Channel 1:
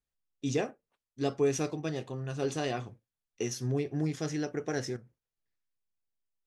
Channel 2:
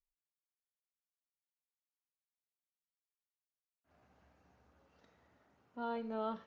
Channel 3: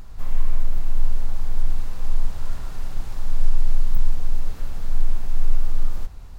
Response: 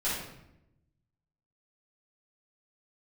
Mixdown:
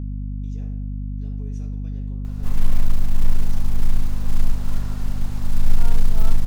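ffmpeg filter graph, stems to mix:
-filter_complex "[0:a]alimiter=limit=-23.5dB:level=0:latency=1:release=96,acompressor=threshold=-32dB:ratio=6,volume=-18.5dB,asplit=2[link_01][link_02];[link_02]volume=-9dB[link_03];[1:a]highpass=370,volume=-1.5dB[link_04];[2:a]adelay=2250,volume=1.5dB[link_05];[3:a]atrim=start_sample=2205[link_06];[link_03][link_06]afir=irnorm=-1:irlink=0[link_07];[link_01][link_04][link_05][link_07]amix=inputs=4:normalize=0,acrusher=bits=9:mode=log:mix=0:aa=0.000001,aeval=exprs='val(0)+0.0501*(sin(2*PI*50*n/s)+sin(2*PI*2*50*n/s)/2+sin(2*PI*3*50*n/s)/3+sin(2*PI*4*50*n/s)/4+sin(2*PI*5*50*n/s)/5)':channel_layout=same"

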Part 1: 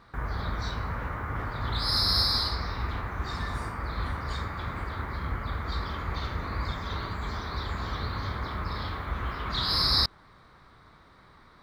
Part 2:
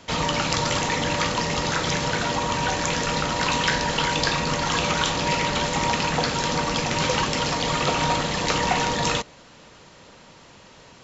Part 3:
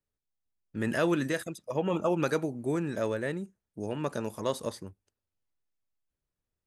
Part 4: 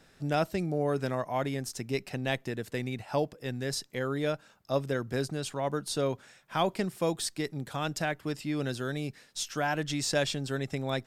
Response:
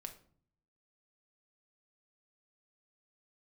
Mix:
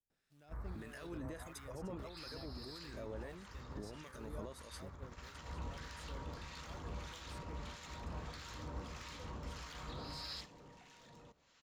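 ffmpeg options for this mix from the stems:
-filter_complex "[0:a]equalizer=frequency=63:width=2.3:gain=8,adelay=350,volume=-16dB[link_01];[1:a]acrossover=split=460[link_02][link_03];[link_03]acompressor=threshold=-26dB:ratio=4[link_04];[link_02][link_04]amix=inputs=2:normalize=0,adelay=2100,volume=-8dB[link_05];[2:a]acompressor=threshold=-34dB:ratio=6,volume=-0.5dB,asplit=2[link_06][link_07];[3:a]acrusher=bits=5:mode=log:mix=0:aa=0.000001,adelay=100,volume=-12dB[link_08];[link_07]apad=whole_len=579095[link_09];[link_05][link_09]sidechaincompress=threshold=-54dB:ratio=8:attack=16:release=551[link_10];[link_01][link_06]amix=inputs=2:normalize=0,alimiter=level_in=12dB:limit=-24dB:level=0:latency=1:release=37,volume=-12dB,volume=0dB[link_11];[link_10][link_08]amix=inputs=2:normalize=0,asoftclip=type=tanh:threshold=-31.5dB,alimiter=level_in=18.5dB:limit=-24dB:level=0:latency=1:release=257,volume=-18.5dB,volume=0dB[link_12];[link_11][link_12]amix=inputs=2:normalize=0,agate=range=-9dB:threshold=-45dB:ratio=16:detection=peak,acrossover=split=1200[link_13][link_14];[link_13]aeval=exprs='val(0)*(1-0.7/2+0.7/2*cos(2*PI*1.6*n/s))':channel_layout=same[link_15];[link_14]aeval=exprs='val(0)*(1-0.7/2-0.7/2*cos(2*PI*1.6*n/s))':channel_layout=same[link_16];[link_15][link_16]amix=inputs=2:normalize=0"

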